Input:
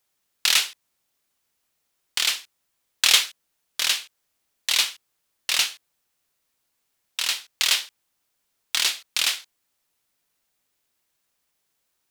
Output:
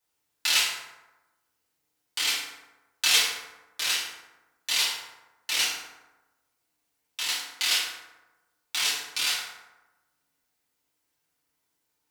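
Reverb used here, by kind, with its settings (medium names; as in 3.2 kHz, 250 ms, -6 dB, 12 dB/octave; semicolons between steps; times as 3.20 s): FDN reverb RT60 1.1 s, low-frequency decay 1×, high-frequency decay 0.5×, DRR -8 dB; trim -10 dB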